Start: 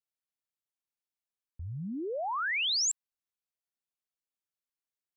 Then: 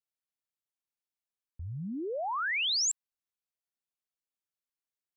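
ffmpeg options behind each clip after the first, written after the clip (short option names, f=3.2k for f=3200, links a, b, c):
-af anull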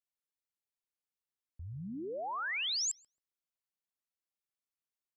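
-filter_complex "[0:a]asplit=2[a][b];[b]adelay=134,lowpass=f=980:p=1,volume=-14dB,asplit=2[c][d];[d]adelay=134,lowpass=f=980:p=1,volume=0.36,asplit=2[e][f];[f]adelay=134,lowpass=f=980:p=1,volume=0.36[g];[a][c][e][g]amix=inputs=4:normalize=0,volume=-5dB"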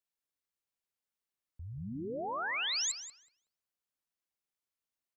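-filter_complex "[0:a]asplit=2[a][b];[b]adelay=185,lowpass=f=2.3k:p=1,volume=-4dB,asplit=2[c][d];[d]adelay=185,lowpass=f=2.3k:p=1,volume=0.3,asplit=2[e][f];[f]adelay=185,lowpass=f=2.3k:p=1,volume=0.3,asplit=2[g][h];[h]adelay=185,lowpass=f=2.3k:p=1,volume=0.3[i];[a][c][e][g][i]amix=inputs=5:normalize=0"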